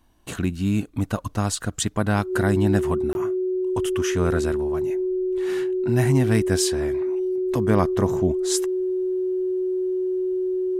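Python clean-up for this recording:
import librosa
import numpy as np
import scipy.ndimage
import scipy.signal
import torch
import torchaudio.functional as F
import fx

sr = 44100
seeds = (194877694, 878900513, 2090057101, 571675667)

y = fx.fix_declip(x, sr, threshold_db=-8.5)
y = fx.notch(y, sr, hz=370.0, q=30.0)
y = fx.fix_interpolate(y, sr, at_s=(3.13,), length_ms=21.0)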